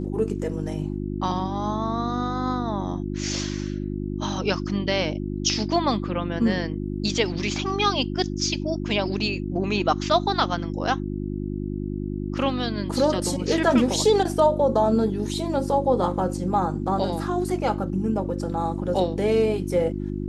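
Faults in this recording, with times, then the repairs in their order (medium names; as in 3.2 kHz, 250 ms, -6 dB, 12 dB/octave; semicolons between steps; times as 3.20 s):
hum 50 Hz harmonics 7 -29 dBFS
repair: de-hum 50 Hz, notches 7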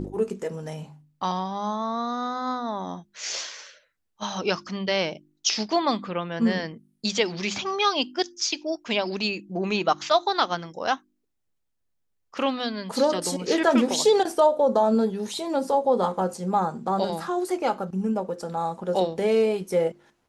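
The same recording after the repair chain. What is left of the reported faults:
nothing left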